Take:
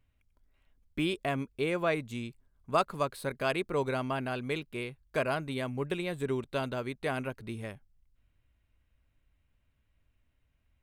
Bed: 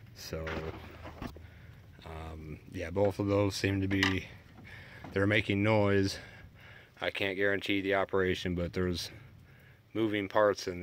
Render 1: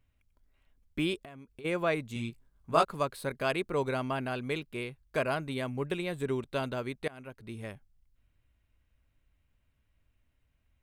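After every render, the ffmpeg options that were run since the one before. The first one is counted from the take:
ffmpeg -i in.wav -filter_complex "[0:a]asplit=3[link_01][link_02][link_03];[link_01]afade=type=out:start_time=1.18:duration=0.02[link_04];[link_02]acompressor=threshold=-44dB:ratio=16:attack=3.2:release=140:knee=1:detection=peak,afade=type=in:start_time=1.18:duration=0.02,afade=type=out:start_time=1.64:duration=0.02[link_05];[link_03]afade=type=in:start_time=1.64:duration=0.02[link_06];[link_04][link_05][link_06]amix=inputs=3:normalize=0,asettb=1/sr,asplit=3[link_07][link_08][link_09];[link_07]atrim=end=2.144[link_10];[link_08]atrim=start=2.14:end=2.85,asetpts=PTS-STARTPTS,afade=type=in:duration=0.004:curve=qsin,afade=type=out:start_time=0.706:duration=0.004:curve=qsin,asplit=2[link_11][link_12];[link_12]adelay=18,volume=-2.5dB[link_13];[link_11][link_13]amix=inputs=2:normalize=0,atrim=end_sample=31311[link_14];[link_09]atrim=start=2.846[link_15];[link_10][link_14]acrossfade=duration=0.004:curve1=hsin:curve2=qsin[link_16];[link_16][link_15]acrossfade=duration=0.004:curve1=qsin:curve2=hsin,asplit=2[link_17][link_18];[link_17]atrim=end=7.08,asetpts=PTS-STARTPTS,afade=type=out:start_time=7.076:duration=0.004:curve=hsin:silence=0.0707946[link_19];[link_18]atrim=start=7.08,asetpts=PTS-STARTPTS,afade=type=in:duration=0.65:silence=0.0707946[link_20];[link_19][link_20]concat=n=2:v=0:a=1" out.wav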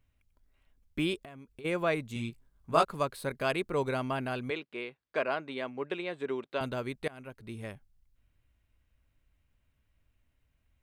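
ffmpeg -i in.wav -filter_complex "[0:a]asettb=1/sr,asplit=3[link_01][link_02][link_03];[link_01]atrim=end=4.504[link_04];[link_02]atrim=start=4.5:end=6.61,asetpts=PTS-STARTPTS,afade=type=in:duration=0.004:curve=qsin,afade=type=out:start_time=2.106:duration=0.004:curve=qsin,highpass=310,lowpass=4000[link_05];[link_03]atrim=start=6.606[link_06];[link_04][link_05]acrossfade=duration=0.004:curve1=hsin:curve2=qsin[link_07];[link_07][link_06]acrossfade=duration=0.004:curve1=qsin:curve2=hsin" out.wav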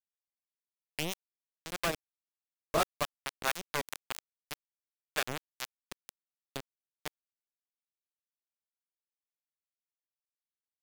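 ffmpeg -i in.wav -filter_complex "[0:a]acrusher=bits=3:mix=0:aa=0.000001,acrossover=split=600[link_01][link_02];[link_01]aeval=exprs='val(0)*(1-0.7/2+0.7/2*cos(2*PI*4.7*n/s))':channel_layout=same[link_03];[link_02]aeval=exprs='val(0)*(1-0.7/2-0.7/2*cos(2*PI*4.7*n/s))':channel_layout=same[link_04];[link_03][link_04]amix=inputs=2:normalize=0" out.wav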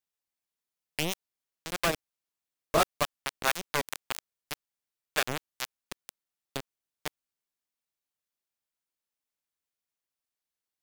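ffmpeg -i in.wav -af "volume=4.5dB" out.wav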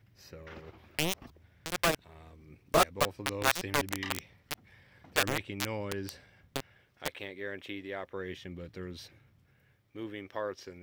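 ffmpeg -i in.wav -i bed.wav -filter_complex "[1:a]volume=-10dB[link_01];[0:a][link_01]amix=inputs=2:normalize=0" out.wav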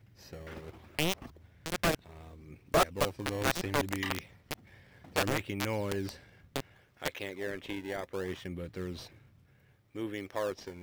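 ffmpeg -i in.wav -filter_complex "[0:a]asplit=2[link_01][link_02];[link_02]acrusher=samples=20:mix=1:aa=0.000001:lfo=1:lforange=32:lforate=0.67,volume=-6dB[link_03];[link_01][link_03]amix=inputs=2:normalize=0,asoftclip=type=tanh:threshold=-18.5dB" out.wav

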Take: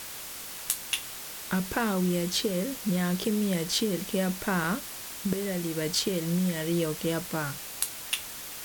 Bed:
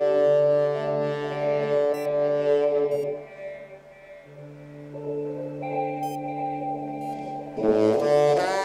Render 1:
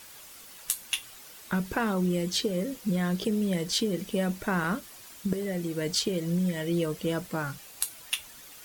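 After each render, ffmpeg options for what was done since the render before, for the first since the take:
ffmpeg -i in.wav -af "afftdn=noise_reduction=10:noise_floor=-40" out.wav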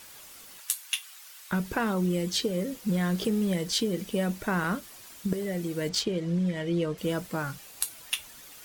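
ffmpeg -i in.wav -filter_complex "[0:a]asettb=1/sr,asplit=3[link_01][link_02][link_03];[link_01]atrim=end=0.604[link_04];[link_02]atrim=start=0.6:end=1.51,asetpts=PTS-STARTPTS,afade=type=in:duration=0.004:curve=qsin,afade=type=out:start_time=0.906:duration=0.004:curve=qsin,highpass=1100[link_05];[link_03]atrim=start=1.506[link_06];[link_04][link_05]acrossfade=duration=0.004:curve1=hsin:curve2=qsin[link_07];[link_07][link_06]acrossfade=duration=0.004:curve1=qsin:curve2=hsin,asettb=1/sr,asplit=3[link_08][link_09][link_10];[link_08]atrim=end=2.894[link_11];[link_09]atrim=start=2.89:end=3.53,asetpts=PTS-STARTPTS,afade=type=in:duration=0.004:curve=qsin,afade=type=out:start_time=0.636:duration=0.004:curve=qsin,aeval=exprs='val(0)+0.5*0.01*sgn(val(0))':channel_layout=same[link_12];[link_10]atrim=start=3.526[link_13];[link_11][link_12]acrossfade=duration=0.004:curve1=hsin:curve2=qsin[link_14];[link_14][link_13]acrossfade=duration=0.004:curve1=qsin:curve2=hsin,asettb=1/sr,asplit=3[link_15][link_16][link_17];[link_15]atrim=end=5.894[link_18];[link_16]atrim=start=5.89:end=6.98,asetpts=PTS-STARTPTS,afade=type=in:duration=0.004:curve=qsin,afade=type=out:start_time=1.086:duration=0.004:curve=qsin,adynamicsmooth=sensitivity=4.5:basefreq=4900[link_19];[link_17]atrim=start=6.976[link_20];[link_18][link_19]acrossfade=duration=0.004:curve1=hsin:curve2=qsin[link_21];[link_21][link_20]acrossfade=duration=0.004:curve1=qsin:curve2=hsin" out.wav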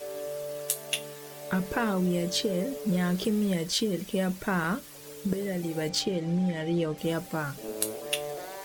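ffmpeg -i in.wav -i bed.wav -filter_complex "[1:a]volume=-16.5dB[link_01];[0:a][link_01]amix=inputs=2:normalize=0" out.wav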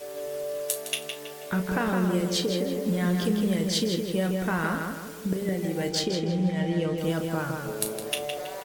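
ffmpeg -i in.wav -filter_complex "[0:a]asplit=2[link_01][link_02];[link_02]adelay=37,volume=-11dB[link_03];[link_01][link_03]amix=inputs=2:normalize=0,asplit=2[link_04][link_05];[link_05]adelay=162,lowpass=frequency=3900:poles=1,volume=-4dB,asplit=2[link_06][link_07];[link_07]adelay=162,lowpass=frequency=3900:poles=1,volume=0.46,asplit=2[link_08][link_09];[link_09]adelay=162,lowpass=frequency=3900:poles=1,volume=0.46,asplit=2[link_10][link_11];[link_11]adelay=162,lowpass=frequency=3900:poles=1,volume=0.46,asplit=2[link_12][link_13];[link_13]adelay=162,lowpass=frequency=3900:poles=1,volume=0.46,asplit=2[link_14][link_15];[link_15]adelay=162,lowpass=frequency=3900:poles=1,volume=0.46[link_16];[link_04][link_06][link_08][link_10][link_12][link_14][link_16]amix=inputs=7:normalize=0" out.wav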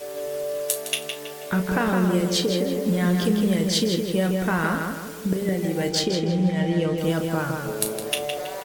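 ffmpeg -i in.wav -af "volume=4dB" out.wav

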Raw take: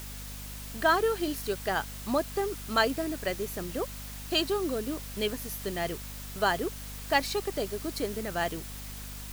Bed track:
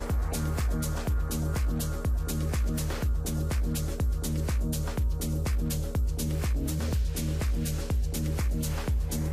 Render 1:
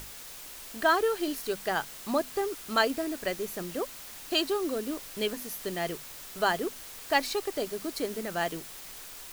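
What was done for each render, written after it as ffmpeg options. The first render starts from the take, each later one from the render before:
ffmpeg -i in.wav -af "bandreject=frequency=50:width_type=h:width=6,bandreject=frequency=100:width_type=h:width=6,bandreject=frequency=150:width_type=h:width=6,bandreject=frequency=200:width_type=h:width=6,bandreject=frequency=250:width_type=h:width=6" out.wav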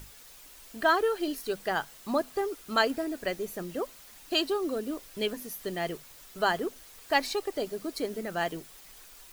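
ffmpeg -i in.wav -af "afftdn=noise_reduction=8:noise_floor=-45" out.wav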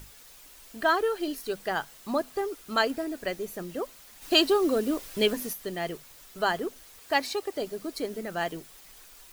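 ffmpeg -i in.wav -filter_complex "[0:a]asplit=3[link_01][link_02][link_03];[link_01]afade=type=out:start_time=4.21:duration=0.02[link_04];[link_02]acontrast=65,afade=type=in:start_time=4.21:duration=0.02,afade=type=out:start_time=5.52:duration=0.02[link_05];[link_03]afade=type=in:start_time=5.52:duration=0.02[link_06];[link_04][link_05][link_06]amix=inputs=3:normalize=0,asettb=1/sr,asplit=3[link_07][link_08][link_09];[link_07]atrim=end=6.984[link_10];[link_08]atrim=start=6.98:end=7.61,asetpts=PTS-STARTPTS,afade=type=in:duration=0.004:curve=qsin,afade=type=out:start_time=0.626:duration=0.004:curve=qsin,highpass=59[link_11];[link_09]atrim=start=7.606[link_12];[link_10][link_11]acrossfade=duration=0.004:curve1=hsin:curve2=qsin[link_13];[link_13][link_12]acrossfade=duration=0.004:curve1=qsin:curve2=hsin" out.wav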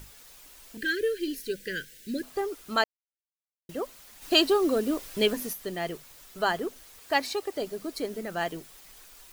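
ffmpeg -i in.wav -filter_complex "[0:a]asettb=1/sr,asplit=3[link_01][link_02][link_03];[link_01]atrim=end=0.774[link_04];[link_02]atrim=start=0.77:end=2.23,asetpts=PTS-STARTPTS,afade=type=in:duration=0.004:curve=qsin,afade=type=out:start_time=1.456:duration=0.004:curve=qsin,asuperstop=centerf=900:order=20:qfactor=0.95[link_05];[link_03]atrim=start=2.226[link_06];[link_04][link_05]acrossfade=duration=0.004:curve1=hsin:curve2=qsin[link_07];[link_07][link_06]acrossfade=duration=0.004:curve1=qsin:curve2=hsin,asplit=3[link_08][link_09][link_10];[link_08]atrim=end=2.84,asetpts=PTS-STARTPTS,afade=type=out:start_time=2.836:duration=0.004:curve=hsin[link_11];[link_09]atrim=start=2.84:end=3.69,asetpts=PTS-STARTPTS,volume=0[link_12];[link_10]atrim=start=3.69,asetpts=PTS-STARTPTS,afade=type=in:duration=0.004:curve=hsin[link_13];[link_11][link_12][link_13]concat=n=3:v=0:a=1" out.wav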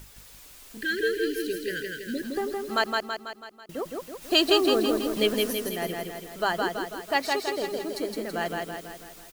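ffmpeg -i in.wav -af "aecho=1:1:164|328|492|656|820|984|1148:0.708|0.382|0.206|0.111|0.0602|0.0325|0.0176" out.wav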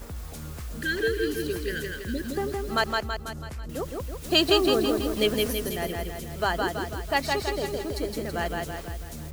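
ffmpeg -i in.wav -i bed.wav -filter_complex "[1:a]volume=-9dB[link_01];[0:a][link_01]amix=inputs=2:normalize=0" out.wav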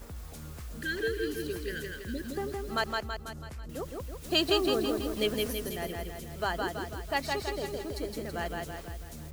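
ffmpeg -i in.wav -af "volume=-5.5dB" out.wav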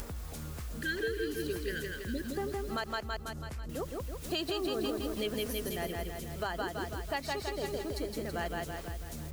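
ffmpeg -i in.wav -af "alimiter=limit=-24dB:level=0:latency=1:release=186,acompressor=mode=upward:threshold=-36dB:ratio=2.5" out.wav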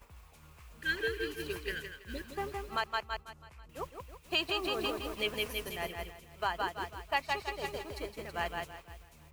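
ffmpeg -i in.wav -af "agate=range=-33dB:threshold=-30dB:ratio=3:detection=peak,equalizer=frequency=250:width_type=o:width=0.67:gain=-6,equalizer=frequency=1000:width_type=o:width=0.67:gain=10,equalizer=frequency=2500:width_type=o:width=0.67:gain=11" out.wav

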